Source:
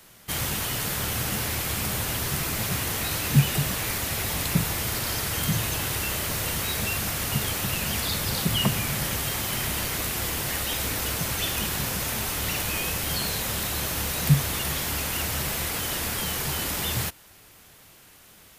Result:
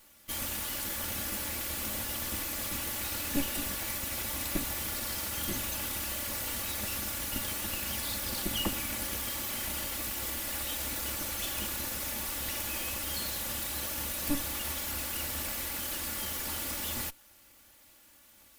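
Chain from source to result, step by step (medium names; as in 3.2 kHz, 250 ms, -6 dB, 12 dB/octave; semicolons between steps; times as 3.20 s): comb filter that takes the minimum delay 3.5 ms; treble shelf 10 kHz +5 dB; trim -7 dB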